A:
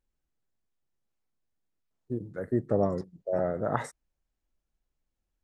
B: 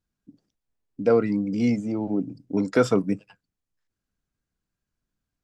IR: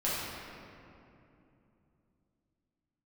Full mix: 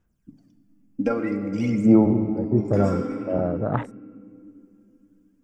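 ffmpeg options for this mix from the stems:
-filter_complex "[0:a]afwtdn=0.02,lowshelf=f=200:g=11,volume=1.19,asplit=2[s0][s1];[1:a]equalizer=f=4100:t=o:w=0.4:g=-13,acompressor=threshold=0.0501:ratio=3,aphaser=in_gain=1:out_gain=1:delay=3.8:decay=0.69:speed=0.51:type=sinusoidal,volume=1.26,asplit=2[s2][s3];[s3]volume=0.211[s4];[s1]apad=whole_len=239879[s5];[s2][s5]sidechaincompress=threshold=0.0178:ratio=8:attack=16:release=695[s6];[2:a]atrim=start_sample=2205[s7];[s4][s7]afir=irnorm=-1:irlink=0[s8];[s0][s6][s8]amix=inputs=3:normalize=0"

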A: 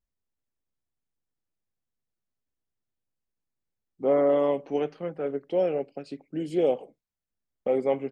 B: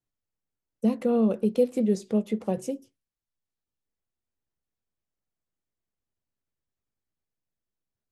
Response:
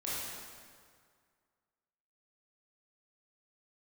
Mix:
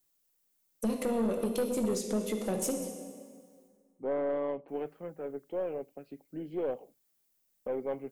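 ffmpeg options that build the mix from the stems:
-filter_complex "[0:a]lowpass=2200,volume=0.398[s0];[1:a]highpass=180,aemphasis=mode=production:type=75kf,acompressor=threshold=0.02:ratio=2.5,volume=1.33,asplit=3[s1][s2][s3];[s1]atrim=end=3.68,asetpts=PTS-STARTPTS,afade=t=out:st=3.676:d=0.004:c=hsin[s4];[s2]atrim=start=3.68:end=4.68,asetpts=PTS-STARTPTS,volume=0[s5];[s3]atrim=start=4.68,asetpts=PTS-STARTPTS,afade=t=in:d=0.004:c=hsin[s6];[s4][s5][s6]concat=n=3:v=0:a=1,asplit=2[s7][s8];[s8]volume=0.531[s9];[2:a]atrim=start_sample=2205[s10];[s9][s10]afir=irnorm=-1:irlink=0[s11];[s0][s7][s11]amix=inputs=3:normalize=0,aeval=exprs='(tanh(15.8*val(0)+0.2)-tanh(0.2))/15.8':c=same"

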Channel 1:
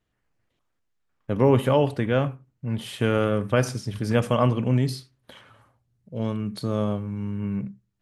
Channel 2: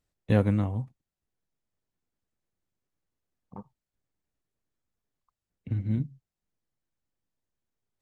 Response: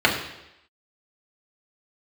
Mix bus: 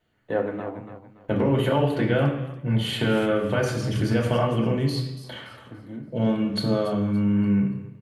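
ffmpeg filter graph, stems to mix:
-filter_complex "[0:a]highshelf=f=7900:g=6,alimiter=limit=0.211:level=0:latency=1,acompressor=threshold=0.0501:ratio=6,volume=0.501,asplit=3[s0][s1][s2];[s1]volume=0.531[s3];[s2]volume=0.596[s4];[1:a]acrossover=split=290 2300:gain=0.141 1 0.141[s5][s6][s7];[s5][s6][s7]amix=inputs=3:normalize=0,volume=0.944,asplit=3[s8][s9][s10];[s9]volume=0.1[s11];[s10]volume=0.447[s12];[2:a]atrim=start_sample=2205[s13];[s3][s11]amix=inputs=2:normalize=0[s14];[s14][s13]afir=irnorm=-1:irlink=0[s15];[s4][s12]amix=inputs=2:normalize=0,aecho=0:1:286|572|858|1144:1|0.31|0.0961|0.0298[s16];[s0][s8][s15][s16]amix=inputs=4:normalize=0"

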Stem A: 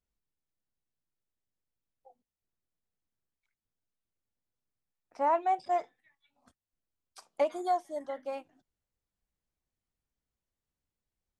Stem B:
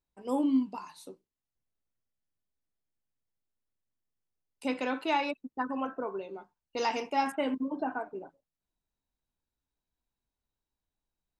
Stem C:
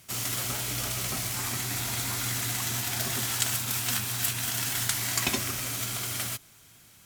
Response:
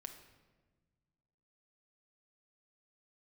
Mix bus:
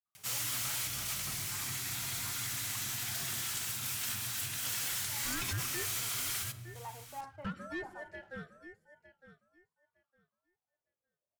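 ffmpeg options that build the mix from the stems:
-filter_complex "[0:a]aeval=exprs='val(0)*sin(2*PI*850*n/s+850*0.4/0.5*sin(2*PI*0.5*n/s))':c=same,adelay=50,volume=0.355,asplit=3[s0][s1][s2];[s1]volume=0.631[s3];[s2]volume=0.251[s4];[1:a]lowpass=1000,aeval=exprs='sgn(val(0))*max(abs(val(0))-0.00112,0)':c=same,volume=0.398,asplit=2[s5][s6];[2:a]adelay=150,volume=1.19,asplit=2[s7][s8];[s8]volume=0.376[s9];[s6]apad=whole_len=317819[s10];[s7][s10]sidechaingate=range=0.398:threshold=0.00178:ratio=16:detection=peak[s11];[s5][s11]amix=inputs=2:normalize=0,highpass=930,alimiter=limit=0.1:level=0:latency=1:release=331,volume=1[s12];[3:a]atrim=start_sample=2205[s13];[s3][s9]amix=inputs=2:normalize=0[s14];[s14][s13]afir=irnorm=-1:irlink=0[s15];[s4]aecho=0:1:909|1818|2727:1|0.17|0.0289[s16];[s0][s12][s15][s16]amix=inputs=4:normalize=0,equalizer=f=110:t=o:w=1.2:g=11,asoftclip=type=tanh:threshold=0.0237"

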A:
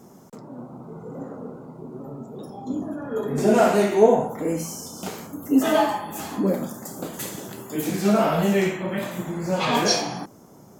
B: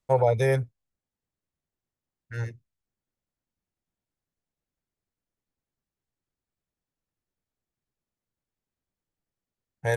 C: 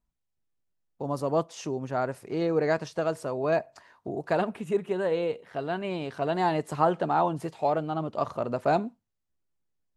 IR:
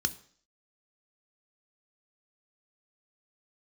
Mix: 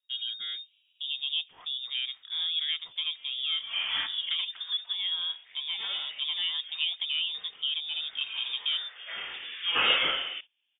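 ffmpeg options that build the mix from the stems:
-filter_complex "[0:a]highpass=780,agate=range=0.0891:threshold=0.00631:ratio=16:detection=peak,adelay=150,volume=1.19[s0];[1:a]volume=0.2[s1];[2:a]acompressor=threshold=0.0501:ratio=2,highshelf=f=6100:g=-9.5,volume=0.708,asplit=2[s2][s3];[s3]apad=whole_len=482535[s4];[s0][s4]sidechaincompress=threshold=0.00251:ratio=4:attack=36:release=315[s5];[s5][s1][s2]amix=inputs=3:normalize=0,lowpass=f=3200:t=q:w=0.5098,lowpass=f=3200:t=q:w=0.6013,lowpass=f=3200:t=q:w=0.9,lowpass=f=3200:t=q:w=2.563,afreqshift=-3800"

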